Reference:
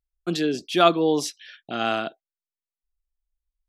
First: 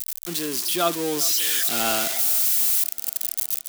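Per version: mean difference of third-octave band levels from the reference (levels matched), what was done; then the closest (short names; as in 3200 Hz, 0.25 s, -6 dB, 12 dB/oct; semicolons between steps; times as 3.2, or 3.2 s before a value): 13.5 dB: switching spikes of -10 dBFS; AGC gain up to 8 dB; on a send: tape echo 0.399 s, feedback 50%, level -17.5 dB, low-pass 4100 Hz; on the sum: gain -7.5 dB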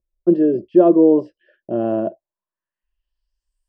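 10.5 dB: ripple EQ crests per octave 1.3, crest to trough 11 dB; in parallel at 0 dB: limiter -14.5 dBFS, peak gain reduction 11.5 dB; on the sum: low-pass sweep 490 Hz -> 9300 Hz, 2.01–3.62; gain -1 dB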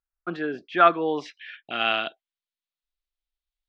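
5.5 dB: low shelf 460 Hz -10 dB; low-pass sweep 1400 Hz -> 3800 Hz, 0.45–2.48; LPF 7700 Hz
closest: third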